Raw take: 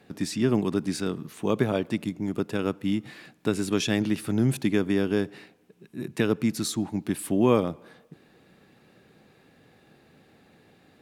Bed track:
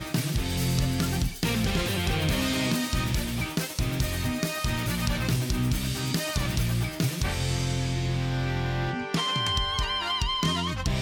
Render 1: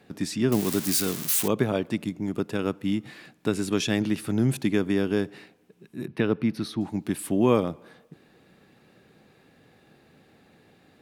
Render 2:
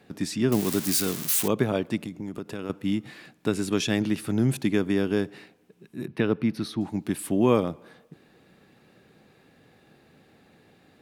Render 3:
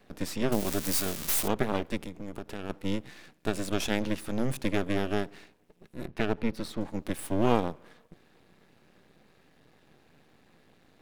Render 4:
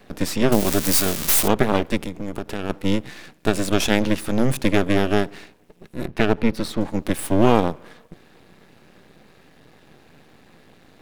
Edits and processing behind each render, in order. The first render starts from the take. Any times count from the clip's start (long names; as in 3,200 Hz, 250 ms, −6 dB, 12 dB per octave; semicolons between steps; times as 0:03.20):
0:00.52–0:01.48: spike at every zero crossing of −18 dBFS; 0:06.06–0:06.81: moving average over 6 samples
0:02.04–0:02.70: downward compressor 4 to 1, threshold −30 dBFS
half-wave rectification
level +10 dB; brickwall limiter −1 dBFS, peak gain reduction 3 dB